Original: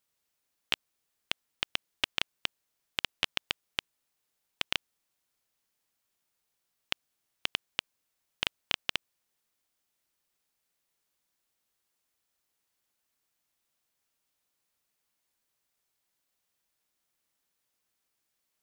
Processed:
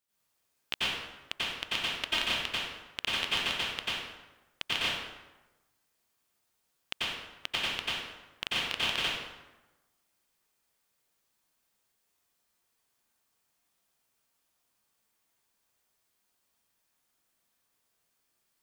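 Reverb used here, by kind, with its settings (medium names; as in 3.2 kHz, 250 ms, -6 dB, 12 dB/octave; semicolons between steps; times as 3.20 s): plate-style reverb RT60 1.1 s, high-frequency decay 0.65×, pre-delay 80 ms, DRR -10 dB; trim -5.5 dB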